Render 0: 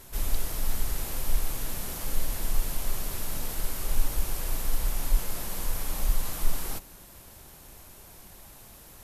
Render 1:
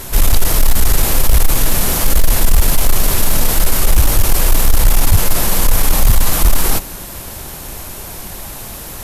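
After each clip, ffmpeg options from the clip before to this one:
-af "aeval=exprs='0.299*sin(PI/2*2.82*val(0)/0.299)':c=same,volume=7.5dB"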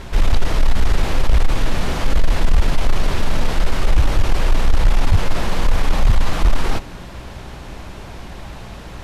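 -af "lowpass=3.5k,aeval=exprs='val(0)+0.0178*(sin(2*PI*60*n/s)+sin(2*PI*2*60*n/s)/2+sin(2*PI*3*60*n/s)/3+sin(2*PI*4*60*n/s)/4+sin(2*PI*5*60*n/s)/5)':c=same,volume=-3dB"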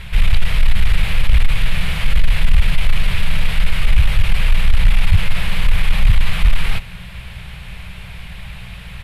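-af "firequalizer=gain_entry='entry(180,0);entry(270,-25);entry(440,-12);entry(840,-10);entry(2300,6);entry(3500,2);entry(6000,-11);entry(9300,1)':delay=0.05:min_phase=1,volume=2dB"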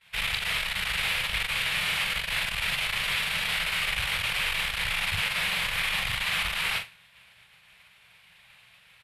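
-filter_complex "[0:a]highpass=f=1.2k:p=1,asplit=2[a][b];[b]adelay=42,volume=-6dB[c];[a][c]amix=inputs=2:normalize=0,agate=range=-33dB:threshold=-29dB:ratio=3:detection=peak"

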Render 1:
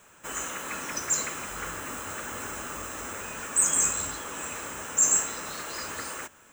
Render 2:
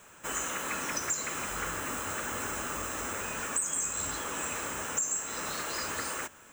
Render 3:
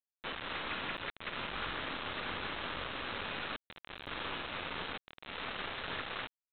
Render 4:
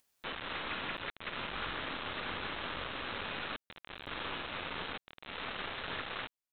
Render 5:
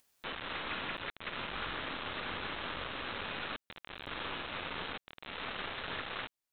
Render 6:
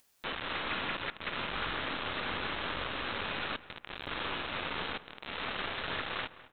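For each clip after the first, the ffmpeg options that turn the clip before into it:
-af "acompressor=threshold=-30dB:ratio=8,volume=1.5dB"
-af "aeval=exprs='(tanh(112*val(0)+0.1)-tanh(0.1))/112':c=same,aresample=8000,acrusher=bits=6:mix=0:aa=0.000001,aresample=44100,volume=4dB"
-af "acompressor=mode=upward:threshold=-59dB:ratio=2.5"
-af "alimiter=level_in=9.5dB:limit=-24dB:level=0:latency=1:release=209,volume=-9.5dB,volume=3.5dB"
-filter_complex "[0:a]asplit=2[a][b];[b]adelay=206,lowpass=f=2.7k:p=1,volume=-16dB,asplit=2[c][d];[d]adelay=206,lowpass=f=2.7k:p=1,volume=0.37,asplit=2[e][f];[f]adelay=206,lowpass=f=2.7k:p=1,volume=0.37[g];[a][c][e][g]amix=inputs=4:normalize=0,volume=3.5dB"

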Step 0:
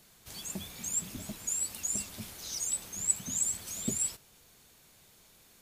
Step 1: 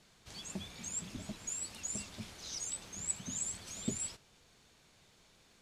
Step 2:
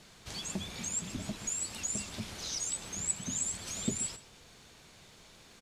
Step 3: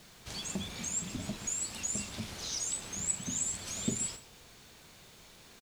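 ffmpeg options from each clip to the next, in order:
-af "lowpass=6.1k,volume=-2dB"
-filter_complex "[0:a]asplit=2[a][b];[b]acompressor=threshold=-47dB:ratio=6,volume=2dB[c];[a][c]amix=inputs=2:normalize=0,asplit=2[d][e];[e]adelay=128.3,volume=-15dB,highshelf=f=4k:g=-2.89[f];[d][f]amix=inputs=2:normalize=0,volume=1.5dB"
-filter_complex "[0:a]asplit=2[a][b];[b]adelay=40,volume=-11dB[c];[a][c]amix=inputs=2:normalize=0,acrusher=bits=9:mix=0:aa=0.000001"

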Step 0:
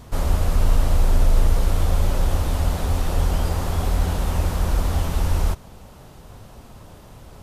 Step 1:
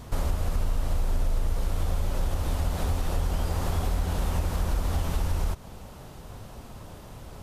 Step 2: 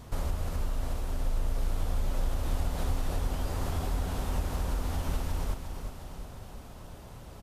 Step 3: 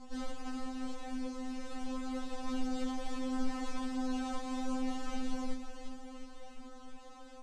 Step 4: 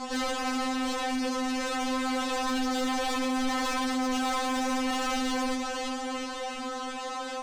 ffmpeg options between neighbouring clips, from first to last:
-af "acompressor=threshold=-23dB:ratio=4"
-af "aecho=1:1:357|714|1071|1428|1785|2142|2499:0.398|0.231|0.134|0.0777|0.0451|0.0261|0.0152,volume=-4.5dB"
-af "flanger=delay=19.5:depth=3.6:speed=0.74,lowpass=f=7.8k:w=0.5412,lowpass=f=7.8k:w=1.3066,afftfilt=real='re*3.46*eq(mod(b,12),0)':imag='im*3.46*eq(mod(b,12),0)':win_size=2048:overlap=0.75,volume=2.5dB"
-filter_complex "[0:a]asplit=2[a][b];[b]highpass=f=720:p=1,volume=30dB,asoftclip=type=tanh:threshold=-21.5dB[c];[a][c]amix=inputs=2:normalize=0,lowpass=f=6.4k:p=1,volume=-6dB"

